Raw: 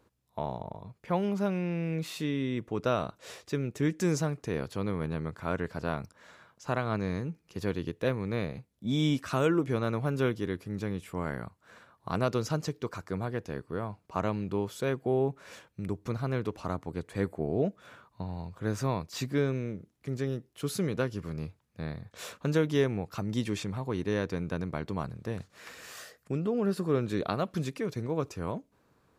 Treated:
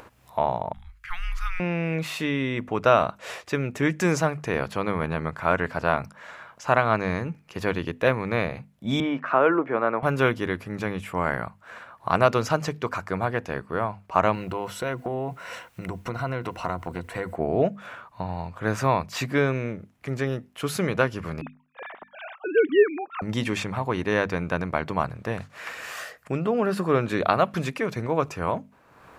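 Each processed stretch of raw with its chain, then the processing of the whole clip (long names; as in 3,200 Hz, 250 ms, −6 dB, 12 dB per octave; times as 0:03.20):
0:00.73–0:01.60: elliptic band-stop filter 210–1,500 Hz, stop band 60 dB + frequency shifter −170 Hz
0:09.00–0:10.03: low-pass filter 5,100 Hz + three-way crossover with the lows and the highs turned down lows −21 dB, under 220 Hz, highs −21 dB, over 2,100 Hz
0:14.34–0:17.36: EQ curve with evenly spaced ripples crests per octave 2, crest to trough 9 dB + bit-depth reduction 12 bits, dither triangular + downward compressor, threshold −31 dBFS
0:21.41–0:23.22: three sine waves on the formant tracks + parametric band 200 Hz +7.5 dB 0.58 octaves
whole clip: flat-topped bell 1,300 Hz +8 dB 2.6 octaves; mains-hum notches 50/100/150/200/250 Hz; upward compression, threshold −43 dBFS; level +4.5 dB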